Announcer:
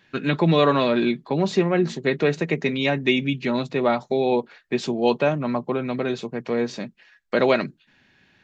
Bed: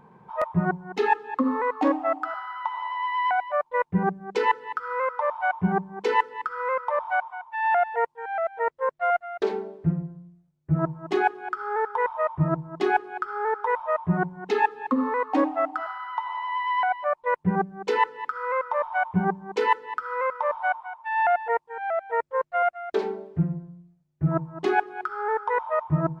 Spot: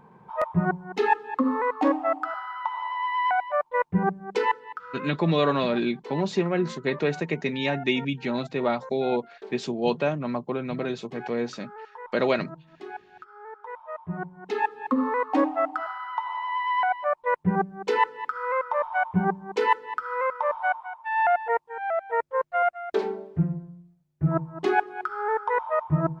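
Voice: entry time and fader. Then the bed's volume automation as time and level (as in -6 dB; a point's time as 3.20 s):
4.80 s, -4.5 dB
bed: 4.37 s 0 dB
5.29 s -16.5 dB
13.47 s -16.5 dB
14.96 s 0 dB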